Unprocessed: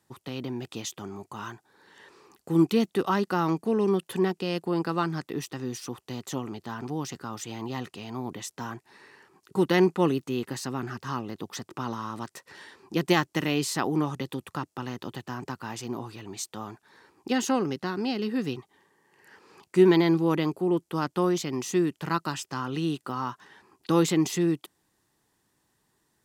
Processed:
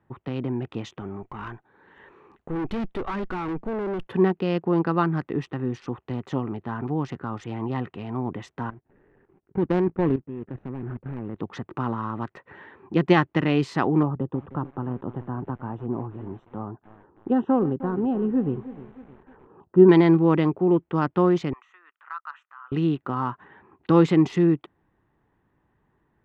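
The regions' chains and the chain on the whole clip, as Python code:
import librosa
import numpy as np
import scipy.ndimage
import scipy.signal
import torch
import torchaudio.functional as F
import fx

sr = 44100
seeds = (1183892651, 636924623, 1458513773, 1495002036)

y = fx.chain(x, sr, fx.high_shelf(hz=3400.0, db=9.5),
    fx.tube_stage(drive_db=31.0, bias=0.5), at=(1.0, 4.07))
y = fx.chain(y, sr, fx.median_filter(points=41),
    fx.level_steps(step_db=13), at=(8.7, 11.36))
y = fx.chain(y, sr, fx.moving_average(points=20),
    fx.echo_crushed(ms=309, feedback_pct=55, bits=7, wet_db=-15), at=(14.03, 19.89))
y = fx.chain(y, sr, fx.level_steps(step_db=10),
    fx.ladder_highpass(hz=1100.0, resonance_pct=55), at=(21.53, 22.72))
y = fx.wiener(y, sr, points=9)
y = scipy.signal.sosfilt(scipy.signal.butter(2, 2300.0, 'lowpass', fs=sr, output='sos'), y)
y = fx.low_shelf(y, sr, hz=87.0, db=10.0)
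y = y * librosa.db_to_amplitude(4.5)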